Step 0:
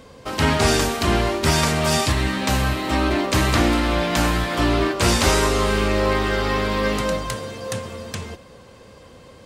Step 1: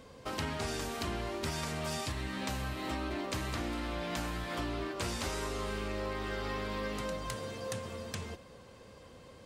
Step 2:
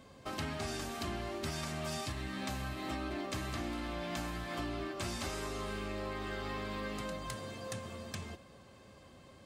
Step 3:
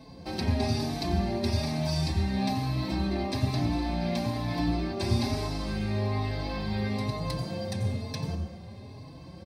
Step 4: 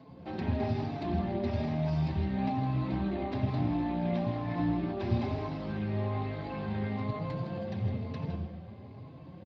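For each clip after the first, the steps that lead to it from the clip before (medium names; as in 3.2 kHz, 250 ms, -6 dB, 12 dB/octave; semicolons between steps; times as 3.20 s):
compression 6:1, threshold -25 dBFS, peak gain reduction 12 dB; trim -8.5 dB
comb of notches 480 Hz; trim -1.5 dB
reverse; upward compressor, threshold -52 dBFS; reverse; reverberation RT60 1.0 s, pre-delay 84 ms, DRR 6 dB; endless flanger 4.2 ms +1.1 Hz; trim +2.5 dB
Gaussian low-pass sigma 2.6 samples; delay 160 ms -10.5 dB; trim -2.5 dB; Speex 17 kbps 16 kHz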